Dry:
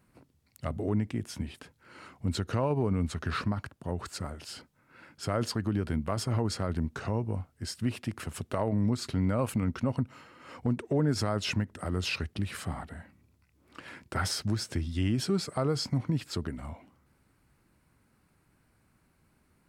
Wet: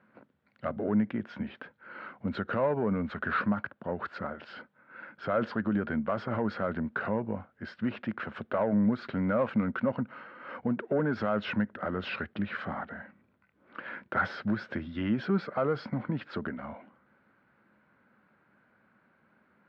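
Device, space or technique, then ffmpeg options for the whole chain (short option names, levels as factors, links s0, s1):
overdrive pedal into a guitar cabinet: -filter_complex "[0:a]asplit=2[s0][s1];[s1]highpass=f=720:p=1,volume=5.62,asoftclip=type=tanh:threshold=0.168[s2];[s0][s2]amix=inputs=2:normalize=0,lowpass=f=1800:p=1,volume=0.501,highpass=95,equalizer=f=210:t=q:w=4:g=10,equalizer=f=550:t=q:w=4:g=6,equalizer=f=1500:t=q:w=4:g=8,equalizer=f=2700:t=q:w=4:g=-3,lowpass=f=3400:w=0.5412,lowpass=f=3400:w=1.3066,volume=0.631"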